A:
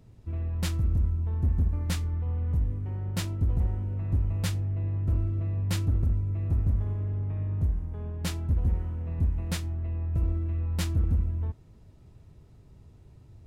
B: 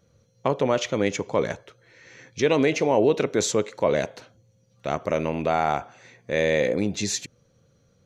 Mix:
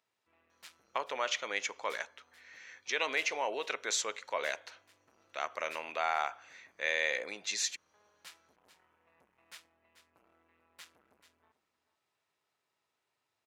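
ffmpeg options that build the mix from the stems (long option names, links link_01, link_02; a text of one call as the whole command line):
ffmpeg -i stem1.wav -i stem2.wav -filter_complex "[0:a]asoftclip=type=tanh:threshold=-29dB,volume=-6.5dB,asplit=2[link_01][link_02];[link_02]volume=-13.5dB[link_03];[1:a]adelay=500,volume=-0.5dB[link_04];[link_03]aecho=0:1:437:1[link_05];[link_01][link_04][link_05]amix=inputs=3:normalize=0,highpass=1300,highshelf=frequency=4200:gain=-7" out.wav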